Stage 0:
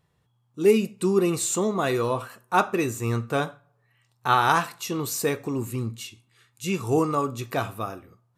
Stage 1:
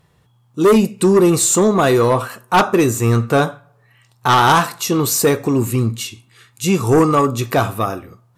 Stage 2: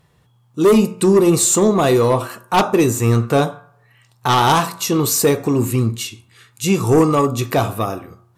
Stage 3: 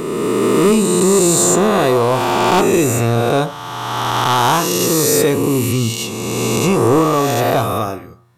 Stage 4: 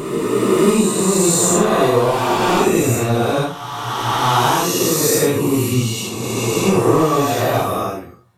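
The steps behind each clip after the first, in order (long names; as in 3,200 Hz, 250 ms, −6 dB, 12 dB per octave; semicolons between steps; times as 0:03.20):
dynamic equaliser 2,500 Hz, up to −5 dB, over −41 dBFS, Q 1.4; in parallel at −8 dB: sine wavefolder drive 10 dB, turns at −7.5 dBFS; on the sum: level +3 dB
hum removal 88.99 Hz, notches 18; dynamic equaliser 1,500 Hz, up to −6 dB, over −30 dBFS, Q 2
peak hold with a rise ahead of every peak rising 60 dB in 2.46 s; in parallel at −0.5 dB: brickwall limiter −8 dBFS, peak gain reduction 10.5 dB; on the sum: level −6.5 dB
random phases in long frames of 200 ms; level −1.5 dB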